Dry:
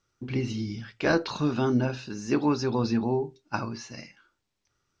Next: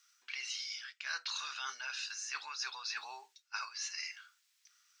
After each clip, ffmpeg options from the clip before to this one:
ffmpeg -i in.wav -af "highpass=frequency=1400:width=0.5412,highpass=frequency=1400:width=1.3066,highshelf=frequency=4700:gain=8.5,areverse,acompressor=threshold=-45dB:ratio=5,areverse,volume=6.5dB" out.wav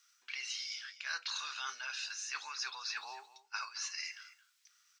ffmpeg -i in.wav -af "aecho=1:1:220:0.168" out.wav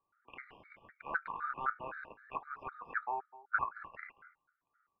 ffmpeg -i in.wav -af "adynamicsmooth=sensitivity=4.5:basefreq=1000,lowpass=frequency=1500:width=0.5412,lowpass=frequency=1500:width=1.3066,afftfilt=real='re*gt(sin(2*PI*3.9*pts/sr)*(1-2*mod(floor(b*sr/1024/1200),2)),0)':imag='im*gt(sin(2*PI*3.9*pts/sr)*(1-2*mod(floor(b*sr/1024/1200),2)),0)':win_size=1024:overlap=0.75,volume=14.5dB" out.wav

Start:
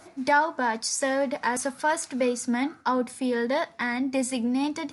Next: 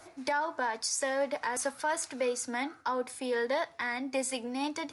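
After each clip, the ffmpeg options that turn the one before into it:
ffmpeg -i in.wav -filter_complex "[0:a]equalizer=frequency=210:width=2.3:gain=-13.5,acrossover=split=210[link_01][link_02];[link_01]acompressor=threshold=-53dB:ratio=6[link_03];[link_02]alimiter=limit=-19.5dB:level=0:latency=1:release=143[link_04];[link_03][link_04]amix=inputs=2:normalize=0,volume=-2dB" out.wav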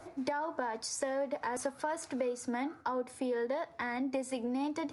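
ffmpeg -i in.wav -af "tiltshelf=frequency=1200:gain=6.5,acompressor=threshold=-31dB:ratio=6" out.wav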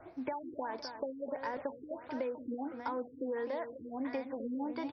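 ffmpeg -i in.wav -af "aecho=1:1:256|512|768|1024|1280:0.355|0.153|0.0656|0.0282|0.0121,afftfilt=real='re*lt(b*sr/1024,460*pow(6200/460,0.5+0.5*sin(2*PI*1.5*pts/sr)))':imag='im*lt(b*sr/1024,460*pow(6200/460,0.5+0.5*sin(2*PI*1.5*pts/sr)))':win_size=1024:overlap=0.75,volume=-3dB" out.wav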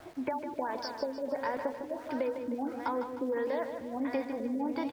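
ffmpeg -i in.wav -af "aeval=exprs='val(0)*gte(abs(val(0)),0.0015)':channel_layout=same,aecho=1:1:154|308|462|616|770:0.376|0.169|0.0761|0.0342|0.0154,volume=4dB" out.wav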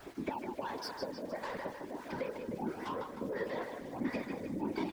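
ffmpeg -i in.wav -filter_complex "[0:a]acrossover=split=150|780[link_01][link_02][link_03];[link_02]bandpass=frequency=350:width_type=q:width=3.3:csg=0[link_04];[link_03]asoftclip=type=tanh:threshold=-38.5dB[link_05];[link_01][link_04][link_05]amix=inputs=3:normalize=0,afftfilt=real='hypot(re,im)*cos(2*PI*random(0))':imag='hypot(re,im)*sin(2*PI*random(1))':win_size=512:overlap=0.75,volume=7.5dB" out.wav

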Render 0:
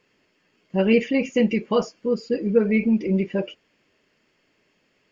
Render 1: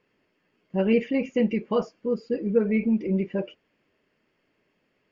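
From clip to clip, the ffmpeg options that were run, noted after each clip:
ffmpeg -i in.wav -af "aemphasis=mode=reproduction:type=75fm,volume=-4dB" out.wav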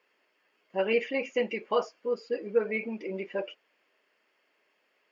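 ffmpeg -i in.wav -af "highpass=590,volume=2.5dB" out.wav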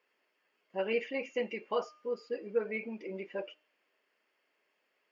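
ffmpeg -i in.wav -af "bandreject=frequency=304.9:width_type=h:width=4,bandreject=frequency=609.8:width_type=h:width=4,bandreject=frequency=914.7:width_type=h:width=4,bandreject=frequency=1219.6:width_type=h:width=4,bandreject=frequency=1524.5:width_type=h:width=4,bandreject=frequency=1829.4:width_type=h:width=4,bandreject=frequency=2134.3:width_type=h:width=4,bandreject=frequency=2439.2:width_type=h:width=4,bandreject=frequency=2744.1:width_type=h:width=4,bandreject=frequency=3049:width_type=h:width=4,bandreject=frequency=3353.9:width_type=h:width=4,bandreject=frequency=3658.8:width_type=h:width=4,bandreject=frequency=3963.7:width_type=h:width=4,bandreject=frequency=4268.6:width_type=h:width=4,bandreject=frequency=4573.5:width_type=h:width=4,bandreject=frequency=4878.4:width_type=h:width=4,bandreject=frequency=5183.3:width_type=h:width=4,bandreject=frequency=5488.2:width_type=h:width=4,bandreject=frequency=5793.1:width_type=h:width=4,bandreject=frequency=6098:width_type=h:width=4,bandreject=frequency=6402.9:width_type=h:width=4,bandreject=frequency=6707.8:width_type=h:width=4,bandreject=frequency=7012.7:width_type=h:width=4,bandreject=frequency=7317.6:width_type=h:width=4,bandreject=frequency=7622.5:width_type=h:width=4,bandreject=frequency=7927.4:width_type=h:width=4,bandreject=frequency=8232.3:width_type=h:width=4,bandreject=frequency=8537.2:width_type=h:width=4,bandreject=frequency=8842.1:width_type=h:width=4,bandreject=frequency=9147:width_type=h:width=4,bandreject=frequency=9451.9:width_type=h:width=4,volume=-5.5dB" out.wav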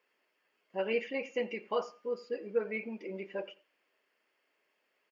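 ffmpeg -i in.wav -filter_complex "[0:a]asplit=2[link_01][link_02];[link_02]adelay=88,lowpass=frequency=2000:poles=1,volume=-18.5dB,asplit=2[link_03][link_04];[link_04]adelay=88,lowpass=frequency=2000:poles=1,volume=0.23[link_05];[link_01][link_03][link_05]amix=inputs=3:normalize=0" out.wav

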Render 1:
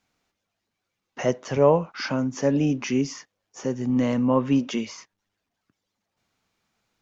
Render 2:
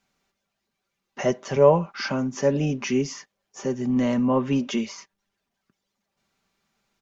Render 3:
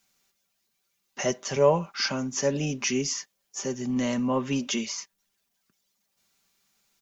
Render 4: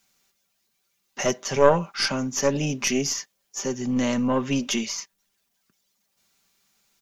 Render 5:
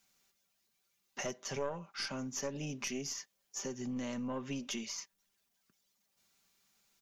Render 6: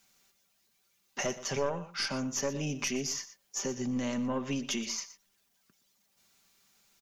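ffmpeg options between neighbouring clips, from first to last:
ffmpeg -i in.wav -af "aecho=1:1:5.1:0.47" out.wav
ffmpeg -i in.wav -af "crystalizer=i=4.5:c=0,volume=-5dB" out.wav
ffmpeg -i in.wav -af "aeval=exprs='0.376*(cos(1*acos(clip(val(0)/0.376,-1,1)))-cos(1*PI/2))+0.15*(cos(2*acos(clip(val(0)/0.376,-1,1)))-cos(2*PI/2))':channel_layout=same,volume=3dB" out.wav
ffmpeg -i in.wav -af "acompressor=threshold=-33dB:ratio=3,volume=-6dB" out.wav
ffmpeg -i in.wav -af "aecho=1:1:120:0.178,volume=6dB" out.wav

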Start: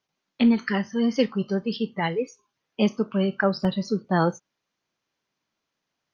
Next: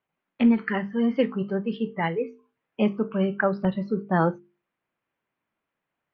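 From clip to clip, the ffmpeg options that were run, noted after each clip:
ffmpeg -i in.wav -af "lowpass=frequency=2600:width=0.5412,lowpass=frequency=2600:width=1.3066,bandreject=frequency=50:width_type=h:width=6,bandreject=frequency=100:width_type=h:width=6,bandreject=frequency=150:width_type=h:width=6,bandreject=frequency=200:width_type=h:width=6,bandreject=frequency=250:width_type=h:width=6,bandreject=frequency=300:width_type=h:width=6,bandreject=frequency=350:width_type=h:width=6,bandreject=frequency=400:width_type=h:width=6,bandreject=frequency=450:width_type=h:width=6" out.wav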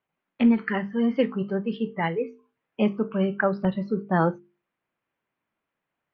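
ffmpeg -i in.wav -af anull out.wav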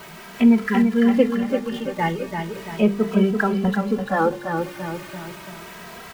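ffmpeg -i in.wav -filter_complex "[0:a]aeval=exprs='val(0)+0.5*0.0158*sgn(val(0))':channel_layout=same,asplit=2[link_01][link_02];[link_02]aecho=0:1:339|678|1017|1356|1695|2034:0.501|0.241|0.115|0.0554|0.0266|0.0128[link_03];[link_01][link_03]amix=inputs=2:normalize=0,asplit=2[link_04][link_05];[link_05]adelay=2.7,afreqshift=0.36[link_06];[link_04][link_06]amix=inputs=2:normalize=1,volume=5.5dB" out.wav

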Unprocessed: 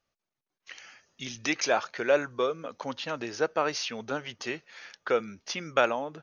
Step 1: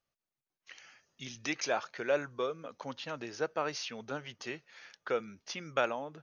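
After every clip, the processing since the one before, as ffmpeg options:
ffmpeg -i in.wav -af "equalizer=frequency=140:width=4.6:gain=4.5,volume=-6.5dB" out.wav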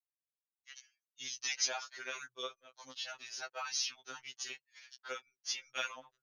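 ffmpeg -i in.wav -af "aderivative,anlmdn=0.0000398,afftfilt=real='re*2.45*eq(mod(b,6),0)':imag='im*2.45*eq(mod(b,6),0)':win_size=2048:overlap=0.75,volume=11dB" out.wav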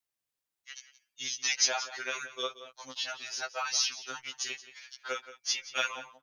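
ffmpeg -i in.wav -filter_complex "[0:a]asplit=2[link_01][link_02];[link_02]adelay=174.9,volume=-14dB,highshelf=frequency=4000:gain=-3.94[link_03];[link_01][link_03]amix=inputs=2:normalize=0,volume=7dB" out.wav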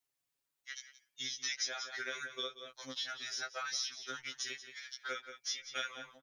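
ffmpeg -i in.wav -af "aecho=1:1:7.2:0.91,acompressor=threshold=-38dB:ratio=2.5,volume=-1.5dB" out.wav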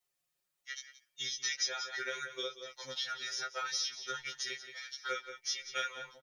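ffmpeg -i in.wav -af "aecho=1:1:5.6:0.83,aecho=1:1:1188:0.0841" out.wav

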